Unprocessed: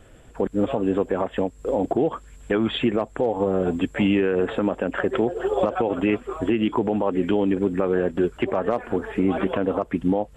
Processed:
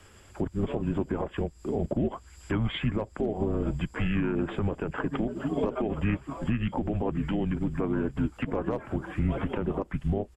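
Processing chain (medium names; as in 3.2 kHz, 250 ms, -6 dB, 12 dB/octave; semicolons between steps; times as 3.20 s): harmony voices -7 st -5 dB; frequency shift -110 Hz; tape noise reduction on one side only encoder only; trim -7.5 dB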